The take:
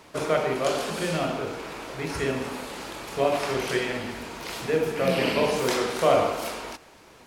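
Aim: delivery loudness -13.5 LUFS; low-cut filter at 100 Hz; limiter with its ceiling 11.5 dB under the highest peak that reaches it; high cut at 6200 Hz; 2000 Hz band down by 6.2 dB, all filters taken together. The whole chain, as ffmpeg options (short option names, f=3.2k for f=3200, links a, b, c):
-af "highpass=100,lowpass=6.2k,equalizer=f=2k:t=o:g=-8,volume=17dB,alimiter=limit=-2.5dB:level=0:latency=1"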